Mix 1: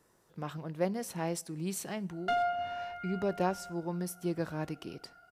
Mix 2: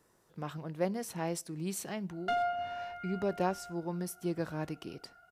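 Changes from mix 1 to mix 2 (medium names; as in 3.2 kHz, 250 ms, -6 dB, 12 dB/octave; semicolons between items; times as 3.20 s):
speech: send off; background: send -7.5 dB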